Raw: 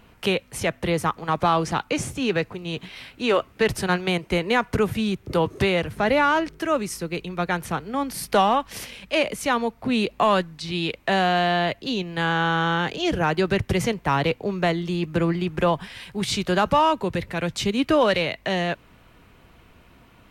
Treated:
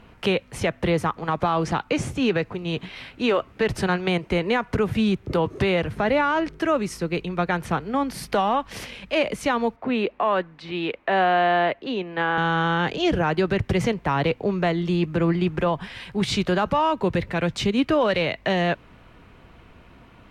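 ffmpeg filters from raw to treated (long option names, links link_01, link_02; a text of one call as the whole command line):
ffmpeg -i in.wav -filter_complex "[0:a]asettb=1/sr,asplit=3[link_01][link_02][link_03];[link_01]atrim=end=9.764[link_04];[link_02]atrim=start=9.76:end=12.38,asetpts=PTS-STARTPTS,afade=type=in:duration=0.004:curve=qsin,afade=type=out:start_time=2.616:duration=0.004:curve=qsin,acrossover=split=260 3000:gain=0.2 1 0.178[link_05][link_06][link_07];[link_05][link_06][link_07]amix=inputs=3:normalize=0[link_08];[link_03]atrim=start=12.376[link_09];[link_04][link_08]acrossfade=duration=0.004:curve1=hsin:curve2=qsin[link_10];[link_10][link_09]acrossfade=duration=0.004:curve1=qsin:curve2=hsin,aemphasis=mode=reproduction:type=50kf,alimiter=limit=-16dB:level=0:latency=1:release=130,volume=3.5dB" out.wav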